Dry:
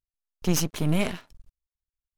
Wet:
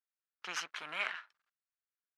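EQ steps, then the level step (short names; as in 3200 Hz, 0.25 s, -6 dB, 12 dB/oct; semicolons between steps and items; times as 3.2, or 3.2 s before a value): ladder band-pass 1700 Hz, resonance 50%; +9.0 dB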